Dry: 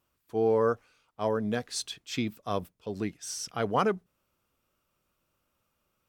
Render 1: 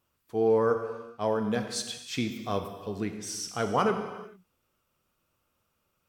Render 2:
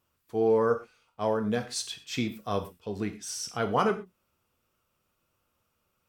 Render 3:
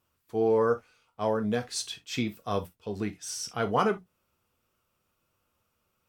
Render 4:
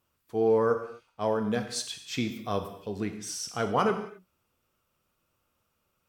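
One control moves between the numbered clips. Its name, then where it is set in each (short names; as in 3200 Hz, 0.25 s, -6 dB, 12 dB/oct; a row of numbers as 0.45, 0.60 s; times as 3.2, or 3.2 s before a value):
non-linear reverb, gate: 470, 150, 90, 290 ms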